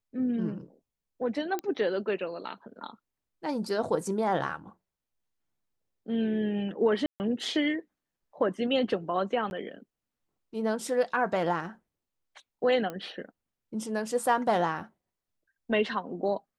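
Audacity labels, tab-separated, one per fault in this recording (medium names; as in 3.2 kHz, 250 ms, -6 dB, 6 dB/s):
1.590000	1.590000	pop -18 dBFS
7.060000	7.200000	dropout 139 ms
9.500000	9.510000	dropout 11 ms
12.900000	12.900000	pop -22 dBFS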